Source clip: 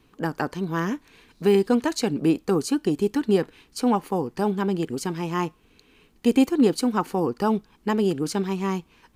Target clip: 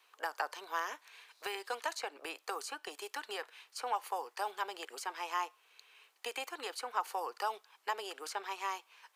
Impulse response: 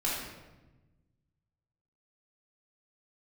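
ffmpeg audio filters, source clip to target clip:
-filter_complex "[0:a]highpass=370,acrossover=split=1200|2400[link_01][link_02][link_03];[link_01]acompressor=threshold=-26dB:ratio=4[link_04];[link_02]acompressor=threshold=-41dB:ratio=4[link_05];[link_03]acompressor=threshold=-44dB:ratio=4[link_06];[link_04][link_05][link_06]amix=inputs=3:normalize=0,acrossover=split=610[link_07][link_08];[link_07]acrusher=bits=2:mix=0:aa=0.5[link_09];[link_09][link_08]amix=inputs=2:normalize=0,volume=-1.5dB"

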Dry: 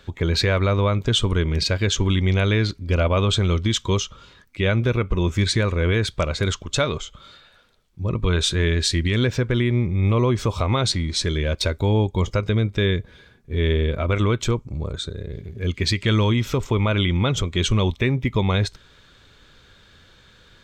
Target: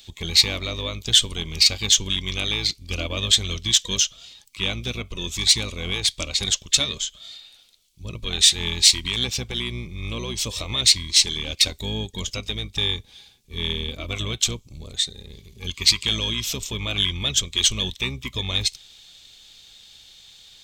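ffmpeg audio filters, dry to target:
ffmpeg -i in.wav -filter_complex "[0:a]asplit=2[link_01][link_02];[link_02]asetrate=22050,aresample=44100,atempo=2,volume=-3dB[link_03];[link_01][link_03]amix=inputs=2:normalize=0,aexciter=amount=9.4:drive=6.8:freq=2500,volume=-12.5dB" out.wav

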